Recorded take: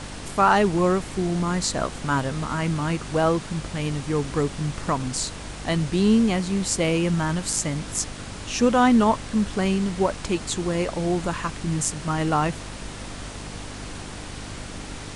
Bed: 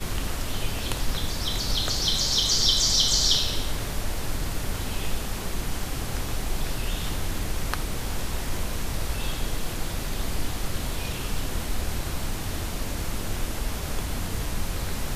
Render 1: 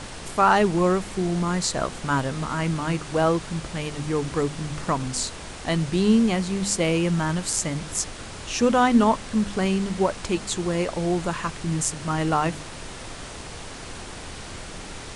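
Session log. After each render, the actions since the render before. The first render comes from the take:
hum removal 50 Hz, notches 6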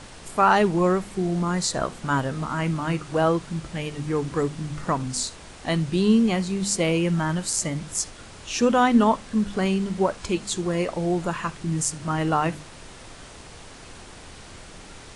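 noise reduction from a noise print 6 dB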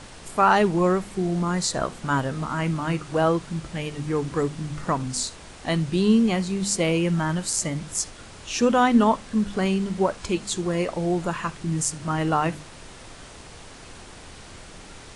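no processing that can be heard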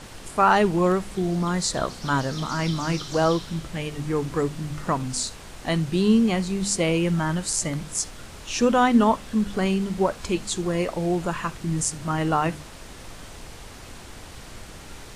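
mix in bed −16.5 dB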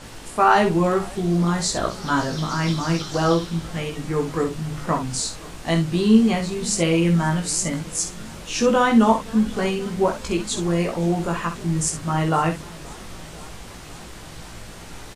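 ambience of single reflections 18 ms −3 dB, 64 ms −8 dB
feedback echo with a swinging delay time 522 ms, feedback 74%, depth 182 cents, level −23 dB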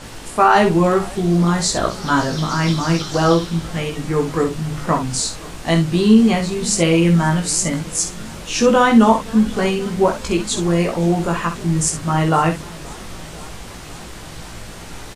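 level +4.5 dB
brickwall limiter −2 dBFS, peak gain reduction 3 dB

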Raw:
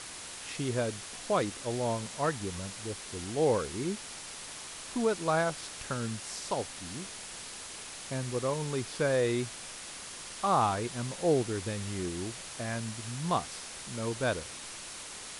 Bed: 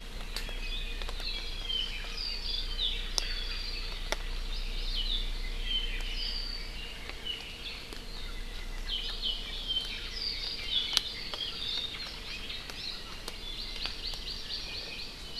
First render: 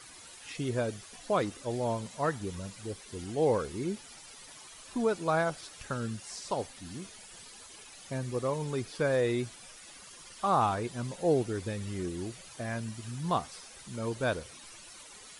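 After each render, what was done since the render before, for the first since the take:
broadband denoise 12 dB, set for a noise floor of −44 dBFS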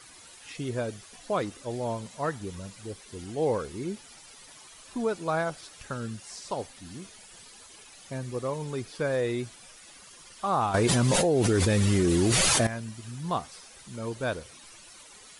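0:10.74–0:12.67: envelope flattener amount 100%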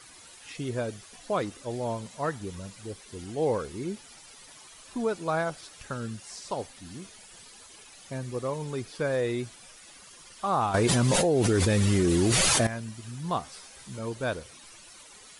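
0:13.45–0:13.99: double-tracking delay 15 ms −4.5 dB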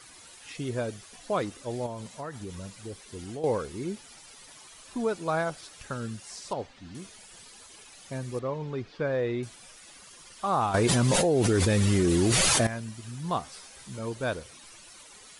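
0:01.86–0:03.44: downward compressor, threshold −33 dBFS
0:06.53–0:06.95: high-frequency loss of the air 140 metres
0:08.39–0:09.43: high-frequency loss of the air 200 metres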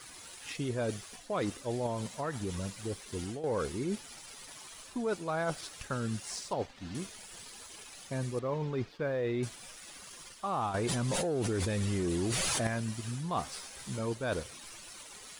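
leveller curve on the samples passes 1
reversed playback
downward compressor 6 to 1, threshold −30 dBFS, peak gain reduction 12 dB
reversed playback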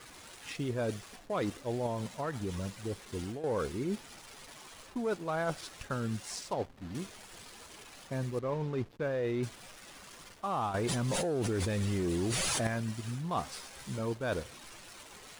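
slack as between gear wheels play −44.5 dBFS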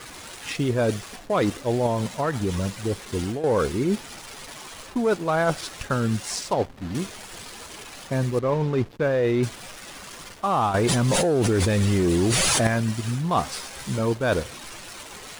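level +11 dB

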